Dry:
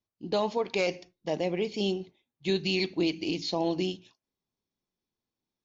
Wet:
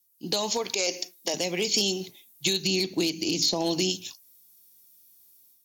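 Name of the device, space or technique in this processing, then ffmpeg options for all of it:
FM broadcast chain: -filter_complex "[0:a]asettb=1/sr,asplit=3[s0][s1][s2];[s0]atrim=end=0.744[s3];[s1]atrim=start=0.74:end=1.34,asetpts=PTS-STARTPTS,afade=t=in:d=0.004:c=qsin,afade=t=out:st=0.596:d=0.004:c=qsin,highpass=f=240:w=0.5412,highpass=f=240:w=1.3066[s4];[s2]atrim=start=1.336[s5];[s3][s4]acrossfade=d=0.004:c1=hsin:c2=qsin[s6];[s6][s5]acrossfade=d=0.004:c1=qsin:c2=hsin,highpass=f=74:w=0.5412,highpass=f=74:w=1.3066,dynaudnorm=f=110:g=5:m=3.55,acrossover=split=110|940|6200[s7][s8][s9][s10];[s7]acompressor=threshold=0.00251:ratio=4[s11];[s8]acompressor=threshold=0.0708:ratio=4[s12];[s9]acompressor=threshold=0.0224:ratio=4[s13];[s10]acompressor=threshold=0.00708:ratio=4[s14];[s11][s12][s13][s14]amix=inputs=4:normalize=0,aemphasis=mode=production:type=75fm,alimiter=limit=0.168:level=0:latency=1:release=256,asoftclip=type=hard:threshold=0.126,lowpass=f=15000:w=0.5412,lowpass=f=15000:w=1.3066,aemphasis=mode=production:type=75fm,asettb=1/sr,asplit=3[s15][s16][s17];[s15]atrim=end=2.644[s18];[s16]atrim=start=2.64:end=3.9,asetpts=PTS-STARTPTS,afade=t=in:d=0.004:c=qsin,afade=t=out:st=1.256:d=0.004:c=qsin,tiltshelf=f=970:g=3[s19];[s17]atrim=start=3.896[s20];[s18][s19]acrossfade=d=0.004:c1=hsin:c2=qsin[s21];[s21][s20]acrossfade=d=0.004:c1=qsin:c2=hsin,volume=0.841"

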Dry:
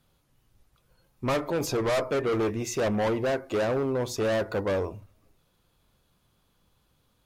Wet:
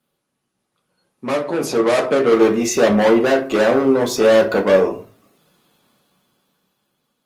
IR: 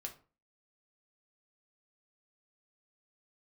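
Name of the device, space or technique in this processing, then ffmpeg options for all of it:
far-field microphone of a smart speaker: -filter_complex "[1:a]atrim=start_sample=2205[s0];[0:a][s0]afir=irnorm=-1:irlink=0,highpass=f=160:w=0.5412,highpass=f=160:w=1.3066,dynaudnorm=f=240:g=13:m=5.01,volume=1.33" -ar 48000 -c:a libopus -b:a 24k

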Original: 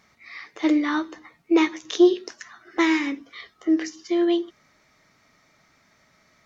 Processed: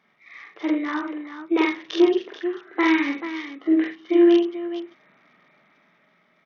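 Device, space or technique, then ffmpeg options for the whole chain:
Bluetooth headset: -filter_complex "[0:a]asettb=1/sr,asplit=3[s0][s1][s2];[s0]atrim=end=2.094[s3];[s1]atrim=start=2.09:end=3,asetpts=PTS-STARTPTS,afade=t=in:d=0.004:c=qsin,afade=t=out:st=0.906:d=0.004:c=qsin,lowpass=5500[s4];[s2]atrim=start=2.996[s5];[s3][s4]acrossfade=d=0.004:c1=hsin:c2=qsin[s6];[s6][s5]acrossfade=d=0.004:c1=qsin:c2=hsin,highpass=f=160:w=0.5412,highpass=f=160:w=1.3066,aecho=1:1:41|46|81|98|436:0.398|0.708|0.355|0.126|0.299,dynaudnorm=f=210:g=13:m=3.35,aresample=8000,aresample=44100,volume=0.562" -ar 48000 -c:a sbc -b:a 64k

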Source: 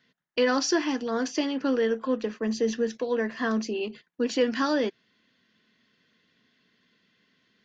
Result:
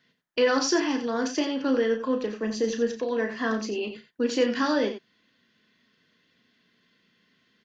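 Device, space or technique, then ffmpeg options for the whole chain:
slapback doubling: -filter_complex "[0:a]asplit=3[s0][s1][s2];[s1]adelay=34,volume=0.422[s3];[s2]adelay=89,volume=0.316[s4];[s0][s3][s4]amix=inputs=3:normalize=0"

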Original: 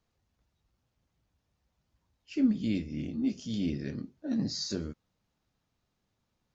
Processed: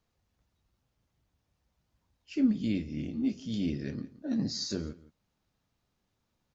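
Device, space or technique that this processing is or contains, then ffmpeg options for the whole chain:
ducked delay: -filter_complex "[0:a]asettb=1/sr,asplit=3[s0][s1][s2];[s0]atrim=end=2.724[s3];[s1]atrim=start=2.72:end=3.52,asetpts=PTS-STARTPTS,afade=t=in:d=0.004:c=qsin,afade=t=out:st=0.796:d=0.004:c=qsin,acrossover=split=4100[s4][s5];[s5]acompressor=threshold=0.00141:ratio=4:attack=1:release=60[s6];[s4][s6]amix=inputs=2:normalize=0[s7];[s2]atrim=start=3.516[s8];[s3][s7]acrossfade=d=0.004:c1=hsin:c2=qsin[s9];[s9][s8]acrossfade=d=0.004:c1=qsin:c2=hsin,asplit=3[s10][s11][s12];[s11]adelay=171,volume=0.355[s13];[s12]apad=whole_len=296358[s14];[s13][s14]sidechaincompress=threshold=0.00891:ratio=10:attack=16:release=758[s15];[s10][s15]amix=inputs=2:normalize=0"

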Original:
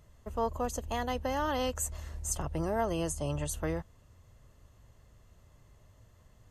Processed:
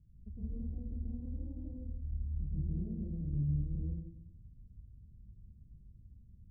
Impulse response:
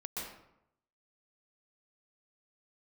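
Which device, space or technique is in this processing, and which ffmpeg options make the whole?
club heard from the street: -filter_complex "[0:a]alimiter=level_in=1.68:limit=0.0631:level=0:latency=1:release=38,volume=0.596,lowpass=f=230:w=0.5412,lowpass=f=230:w=1.3066[s0];[1:a]atrim=start_sample=2205[s1];[s0][s1]afir=irnorm=-1:irlink=0,volume=1.33"

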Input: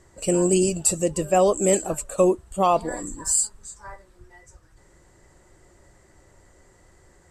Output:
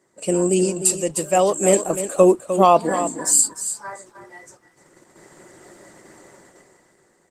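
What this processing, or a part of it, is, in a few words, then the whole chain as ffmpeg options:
video call: -filter_complex "[0:a]asplit=3[s0][s1][s2];[s0]afade=t=out:st=0.82:d=0.02[s3];[s1]tiltshelf=f=1100:g=-3.5,afade=t=in:st=0.82:d=0.02,afade=t=out:st=1.68:d=0.02[s4];[s2]afade=t=in:st=1.68:d=0.02[s5];[s3][s4][s5]amix=inputs=3:normalize=0,highpass=f=160:w=0.5412,highpass=f=160:w=1.3066,aecho=1:1:304:0.282,dynaudnorm=f=510:g=5:m=3.76,agate=range=0.447:threshold=0.00447:ratio=16:detection=peak,volume=1.19" -ar 48000 -c:a libopus -b:a 20k

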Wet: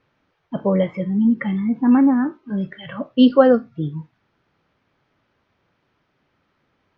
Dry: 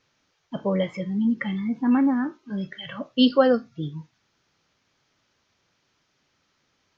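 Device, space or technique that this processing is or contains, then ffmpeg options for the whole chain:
phone in a pocket: -af "lowpass=3300,highshelf=f=2300:g=-10,volume=2"

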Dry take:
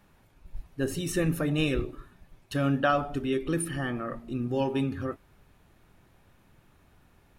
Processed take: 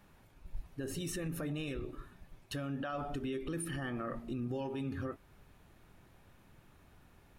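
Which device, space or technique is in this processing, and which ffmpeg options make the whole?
stacked limiters: -af "alimiter=limit=0.112:level=0:latency=1:release=152,alimiter=limit=0.0631:level=0:latency=1:release=291,alimiter=level_in=1.88:limit=0.0631:level=0:latency=1:release=59,volume=0.531,volume=0.891"

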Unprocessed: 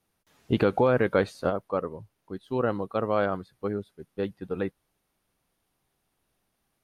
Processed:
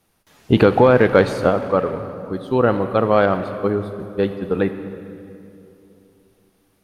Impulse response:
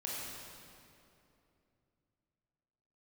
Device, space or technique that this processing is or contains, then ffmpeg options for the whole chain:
saturated reverb return: -filter_complex "[0:a]asplit=2[s0][s1];[1:a]atrim=start_sample=2205[s2];[s1][s2]afir=irnorm=-1:irlink=0,asoftclip=type=tanh:threshold=0.0708,volume=0.447[s3];[s0][s3]amix=inputs=2:normalize=0,volume=2.66"

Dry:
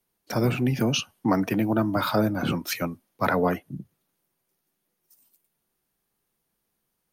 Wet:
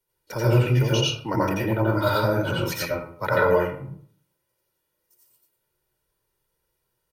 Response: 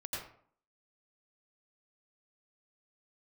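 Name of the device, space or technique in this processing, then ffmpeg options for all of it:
microphone above a desk: -filter_complex "[0:a]aecho=1:1:2.1:0.7[s0];[1:a]atrim=start_sample=2205[s1];[s0][s1]afir=irnorm=-1:irlink=0"

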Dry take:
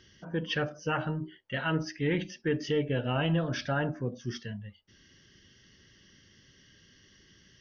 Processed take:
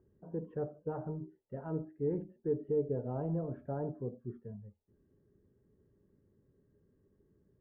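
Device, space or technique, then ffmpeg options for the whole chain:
under water: -af "lowpass=f=880:w=0.5412,lowpass=f=880:w=1.3066,equalizer=f=420:t=o:w=0.23:g=10,volume=0.422"

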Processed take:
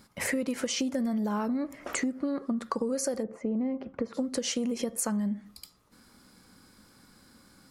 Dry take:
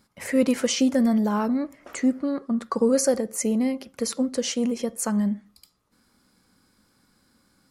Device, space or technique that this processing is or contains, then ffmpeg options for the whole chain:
serial compression, peaks first: -filter_complex "[0:a]acompressor=threshold=0.0355:ratio=5,acompressor=threshold=0.0158:ratio=2,asplit=3[s0][s1][s2];[s0]afade=t=out:st=3.22:d=0.02[s3];[s1]lowpass=1300,afade=t=in:st=3.22:d=0.02,afade=t=out:st=4.13:d=0.02[s4];[s2]afade=t=in:st=4.13:d=0.02[s5];[s3][s4][s5]amix=inputs=3:normalize=0,volume=2"

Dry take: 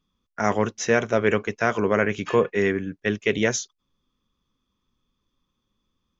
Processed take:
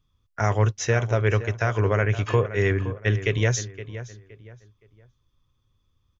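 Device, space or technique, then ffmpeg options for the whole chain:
car stereo with a boomy subwoofer: -filter_complex "[0:a]lowshelf=f=150:t=q:w=3:g=8.5,alimiter=limit=0.355:level=0:latency=1:release=281,asplit=2[s0][s1];[s1]adelay=518,lowpass=f=2700:p=1,volume=0.224,asplit=2[s2][s3];[s3]adelay=518,lowpass=f=2700:p=1,volume=0.31,asplit=2[s4][s5];[s5]adelay=518,lowpass=f=2700:p=1,volume=0.31[s6];[s0][s2][s4][s6]amix=inputs=4:normalize=0"

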